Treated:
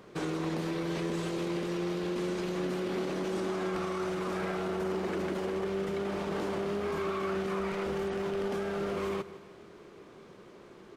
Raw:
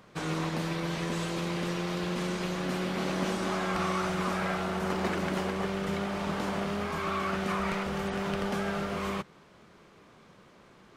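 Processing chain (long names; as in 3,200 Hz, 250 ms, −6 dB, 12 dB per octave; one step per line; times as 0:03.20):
parametric band 380 Hz +10.5 dB 0.78 octaves
brickwall limiter −25.5 dBFS, peak gain reduction 11 dB
on a send: repeating echo 155 ms, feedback 51%, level −16.5 dB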